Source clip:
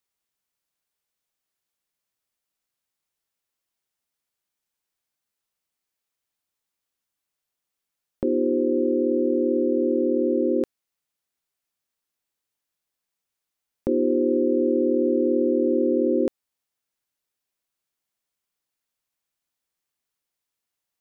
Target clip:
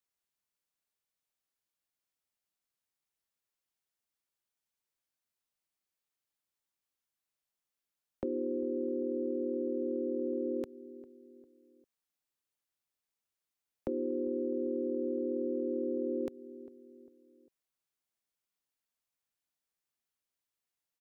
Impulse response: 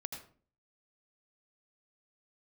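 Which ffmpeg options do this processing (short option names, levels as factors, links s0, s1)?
-filter_complex "[0:a]asplit=2[s0][s1];[s1]adelay=400,lowpass=f=1000:p=1,volume=0.1,asplit=2[s2][s3];[s3]adelay=400,lowpass=f=1000:p=1,volume=0.43,asplit=2[s4][s5];[s5]adelay=400,lowpass=f=1000:p=1,volume=0.43[s6];[s2][s4][s6]amix=inputs=3:normalize=0[s7];[s0][s7]amix=inputs=2:normalize=0,acrossover=split=190|510[s8][s9][s10];[s8]acompressor=threshold=0.0126:ratio=4[s11];[s9]acompressor=threshold=0.0282:ratio=4[s12];[s10]acompressor=threshold=0.0224:ratio=4[s13];[s11][s12][s13]amix=inputs=3:normalize=0,volume=0.473"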